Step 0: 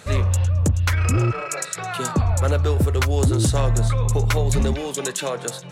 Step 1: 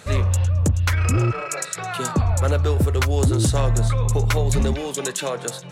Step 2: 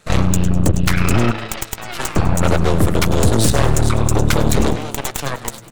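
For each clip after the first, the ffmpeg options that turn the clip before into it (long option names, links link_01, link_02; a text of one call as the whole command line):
ffmpeg -i in.wav -af anull out.wav
ffmpeg -i in.wav -filter_complex "[0:a]aeval=exprs='0.282*(cos(1*acos(clip(val(0)/0.282,-1,1)))-cos(1*PI/2))+0.0708*(cos(3*acos(clip(val(0)/0.282,-1,1)))-cos(3*PI/2))+0.112*(cos(4*acos(clip(val(0)/0.282,-1,1)))-cos(4*PI/2))':channel_layout=same,asplit=6[link_01][link_02][link_03][link_04][link_05][link_06];[link_02]adelay=100,afreqshift=110,volume=-15.5dB[link_07];[link_03]adelay=200,afreqshift=220,volume=-21.3dB[link_08];[link_04]adelay=300,afreqshift=330,volume=-27.2dB[link_09];[link_05]adelay=400,afreqshift=440,volume=-33dB[link_10];[link_06]adelay=500,afreqshift=550,volume=-38.9dB[link_11];[link_01][link_07][link_08][link_09][link_10][link_11]amix=inputs=6:normalize=0,volume=3dB" out.wav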